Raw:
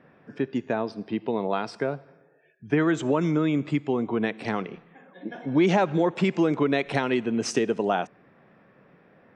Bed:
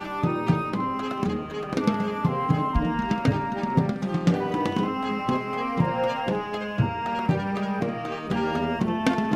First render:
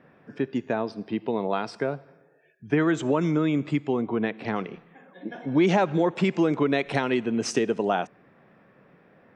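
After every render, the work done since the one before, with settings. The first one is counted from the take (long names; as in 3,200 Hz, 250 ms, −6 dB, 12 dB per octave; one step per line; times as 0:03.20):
0:04.01–0:04.56: high-frequency loss of the air 140 metres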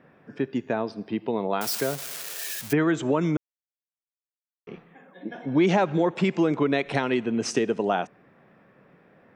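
0:01.61–0:02.73: spike at every zero crossing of −20.5 dBFS
0:03.37–0:04.67: silence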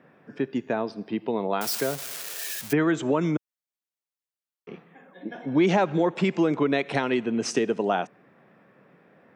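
high-pass filter 120 Hz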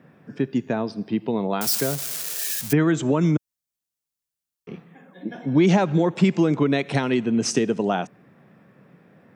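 bass and treble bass +10 dB, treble +7 dB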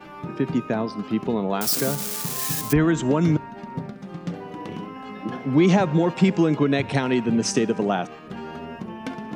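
mix in bed −9.5 dB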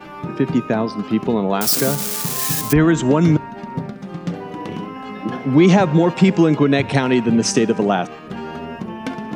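level +5.5 dB
brickwall limiter −3 dBFS, peak gain reduction 2 dB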